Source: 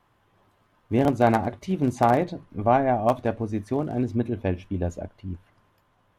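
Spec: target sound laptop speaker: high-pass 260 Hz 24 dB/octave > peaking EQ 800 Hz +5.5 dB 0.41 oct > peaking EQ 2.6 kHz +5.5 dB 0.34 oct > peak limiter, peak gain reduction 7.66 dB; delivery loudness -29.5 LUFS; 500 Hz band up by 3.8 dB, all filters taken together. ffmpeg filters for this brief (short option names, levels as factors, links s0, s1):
-af "highpass=f=260:w=0.5412,highpass=f=260:w=1.3066,equalizer=f=500:t=o:g=3.5,equalizer=f=800:t=o:w=0.41:g=5.5,equalizer=f=2600:t=o:w=0.34:g=5.5,volume=0.596,alimiter=limit=0.188:level=0:latency=1"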